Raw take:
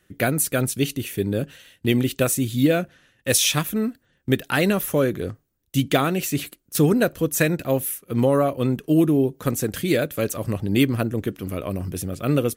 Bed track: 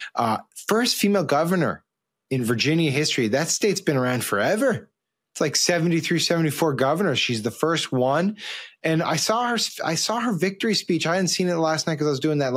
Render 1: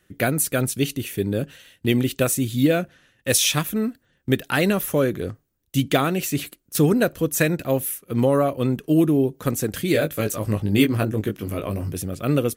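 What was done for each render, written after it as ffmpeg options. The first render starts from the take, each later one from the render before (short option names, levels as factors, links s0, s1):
-filter_complex "[0:a]asettb=1/sr,asplit=3[s0][s1][s2];[s0]atrim=end=9.934[s3];[s1]atrim=start=9.93:end=11.93,asetpts=PTS-STARTPTS,afade=t=in:d=0.004:c=qsin,afade=t=out:st=1.996:d=0.004:c=qsin,asplit=2[s4][s5];[s5]adelay=19,volume=0.596[s6];[s4][s6]amix=inputs=2:normalize=0,atrim=end_sample=88200[s7];[s2]atrim=start=11.926[s8];[s3][s7]acrossfade=d=0.004:c1=hsin:c2=qsin[s9];[s9][s8]acrossfade=d=0.004:c1=qsin:c2=hsin"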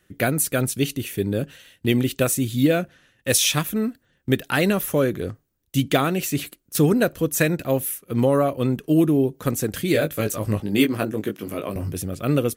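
-filter_complex "[0:a]asettb=1/sr,asplit=3[s0][s1][s2];[s0]atrim=end=10.604[s3];[s1]atrim=start=10.6:end=11.76,asetpts=PTS-STARTPTS,afade=t=in:d=0.004:c=qsin,afade=t=out:st=1.156:d=0.004:c=qsin,highpass=180[s4];[s2]atrim=start=11.756[s5];[s3][s4]acrossfade=d=0.004:c1=hsin:c2=qsin[s6];[s6][s5]acrossfade=d=0.004:c1=qsin:c2=hsin"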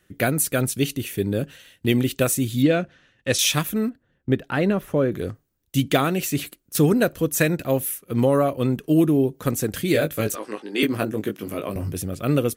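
-filter_complex "[0:a]asettb=1/sr,asplit=3[s0][s1][s2];[s0]atrim=end=2.624[s3];[s1]atrim=start=2.62:end=3.39,asetpts=PTS-STARTPTS,afade=t=in:d=0.004:c=qsin,afade=t=out:st=0.766:d=0.004:c=qsin,lowpass=5600[s4];[s2]atrim=start=3.386[s5];[s3][s4]acrossfade=d=0.004:c1=hsin:c2=qsin[s6];[s6][s5]acrossfade=d=0.004:c1=qsin:c2=hsin,asettb=1/sr,asplit=3[s7][s8][s9];[s7]atrim=end=3.894[s10];[s8]atrim=start=3.89:end=5.12,asetpts=PTS-STARTPTS,afade=t=in:d=0.004:c=qsin,afade=t=out:st=1.226:d=0.004:c=qsin,lowpass=f=1200:p=1[s11];[s9]atrim=start=5.116[s12];[s10][s11]acrossfade=d=0.004:c1=hsin:c2=qsin[s13];[s13][s12]acrossfade=d=0.004:c1=qsin:c2=hsin,asettb=1/sr,asplit=3[s14][s15][s16];[s14]atrim=end=10.354[s17];[s15]atrim=start=10.35:end=10.83,asetpts=PTS-STARTPTS,afade=t=in:d=0.004:c=qsin,afade=t=out:st=0.476:d=0.004:c=qsin,highpass=f=320:w=0.5412,highpass=f=320:w=1.3066,equalizer=f=610:t=q:w=4:g=-9,equalizer=f=1600:t=q:w=4:g=4,equalizer=f=7200:t=q:w=4:g=-7,lowpass=f=8800:w=0.5412,lowpass=f=8800:w=1.3066[s18];[s16]atrim=start=10.826[s19];[s17][s18]acrossfade=d=0.004:c1=hsin:c2=qsin[s20];[s20][s19]acrossfade=d=0.004:c1=qsin:c2=hsin"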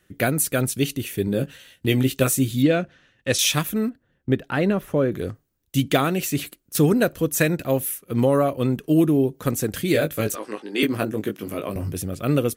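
-filter_complex "[0:a]asettb=1/sr,asplit=3[s0][s1][s2];[s0]atrim=end=1.264[s3];[s1]atrim=start=1.26:end=2.51,asetpts=PTS-STARTPTS,afade=t=in:d=0.004:c=qsin,afade=t=out:st=1.246:d=0.004:c=qsin,asplit=2[s4][s5];[s5]adelay=15,volume=0.473[s6];[s4][s6]amix=inputs=2:normalize=0,atrim=end_sample=55125[s7];[s2]atrim=start=2.506[s8];[s3][s7]acrossfade=d=0.004:c1=hsin:c2=qsin[s9];[s9][s8]acrossfade=d=0.004:c1=qsin:c2=hsin"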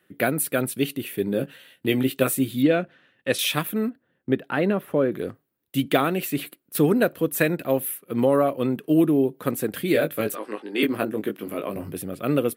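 -af "highpass=190,equalizer=f=6300:w=1.5:g=-13.5"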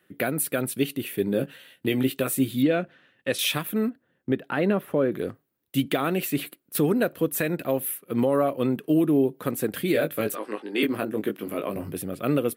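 -af "alimiter=limit=0.237:level=0:latency=1:release=167"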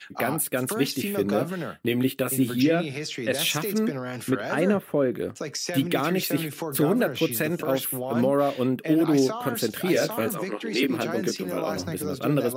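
-filter_complex "[1:a]volume=0.299[s0];[0:a][s0]amix=inputs=2:normalize=0"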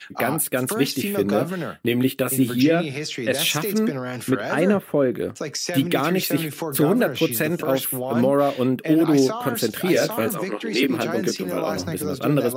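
-af "volume=1.5"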